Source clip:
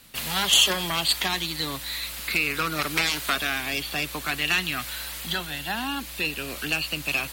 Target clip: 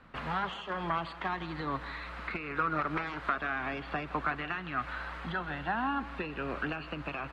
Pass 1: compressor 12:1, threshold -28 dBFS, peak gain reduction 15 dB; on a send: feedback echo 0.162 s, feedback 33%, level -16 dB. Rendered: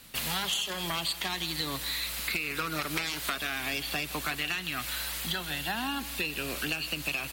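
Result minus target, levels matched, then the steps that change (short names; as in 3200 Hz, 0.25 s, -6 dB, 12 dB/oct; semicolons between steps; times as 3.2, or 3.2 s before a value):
1000 Hz band -8.0 dB
add after compressor: synth low-pass 1300 Hz, resonance Q 1.8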